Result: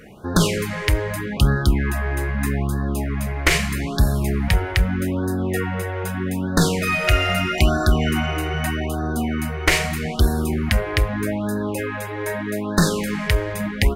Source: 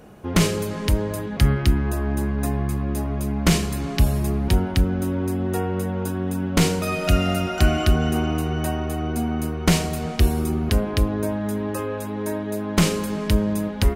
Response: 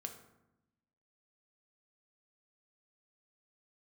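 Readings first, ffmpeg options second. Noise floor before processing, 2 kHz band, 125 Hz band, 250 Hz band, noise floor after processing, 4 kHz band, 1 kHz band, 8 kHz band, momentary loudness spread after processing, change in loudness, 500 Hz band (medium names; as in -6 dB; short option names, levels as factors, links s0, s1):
-29 dBFS, +7.5 dB, +0.5 dB, -0.5 dB, -29 dBFS, +3.0 dB, +2.5 dB, +1.5 dB, 7 LU, +1.5 dB, +0.5 dB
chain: -filter_complex "[0:a]equalizer=f=2000:t=o:w=0.79:g=12.5,asplit=2[s0][s1];[s1]aeval=exprs='clip(val(0),-1,0.0596)':c=same,volume=0.355[s2];[s0][s2]amix=inputs=2:normalize=0,afftfilt=real='re*(1-between(b*sr/1024,200*pow(2600/200,0.5+0.5*sin(2*PI*0.8*pts/sr))/1.41,200*pow(2600/200,0.5+0.5*sin(2*PI*0.8*pts/sr))*1.41))':imag='im*(1-between(b*sr/1024,200*pow(2600/200,0.5+0.5*sin(2*PI*0.8*pts/sr))/1.41,200*pow(2600/200,0.5+0.5*sin(2*PI*0.8*pts/sr))*1.41))':win_size=1024:overlap=0.75,volume=0.891"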